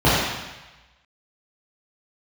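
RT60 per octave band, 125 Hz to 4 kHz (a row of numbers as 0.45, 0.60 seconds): 1.1, 0.90, 1.0, 1.2, 1.2, 1.1 seconds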